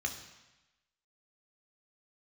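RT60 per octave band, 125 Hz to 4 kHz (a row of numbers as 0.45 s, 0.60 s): 1.0 s, 1.0 s, 0.95 s, 1.1 s, 1.1 s, 1.1 s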